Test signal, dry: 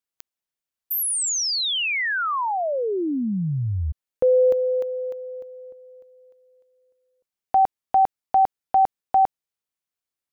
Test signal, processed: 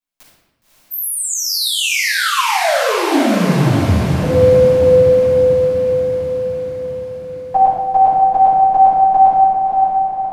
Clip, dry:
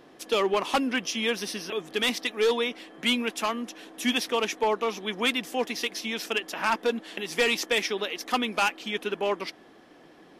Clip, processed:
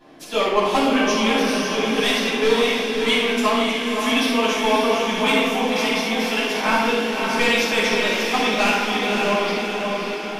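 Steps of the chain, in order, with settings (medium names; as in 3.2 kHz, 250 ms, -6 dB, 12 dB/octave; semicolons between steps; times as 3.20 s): on a send: echo that smears into a reverb 565 ms, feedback 60%, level -4 dB; on the sum: simulated room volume 530 m³, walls mixed, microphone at 8.7 m; trim -9.5 dB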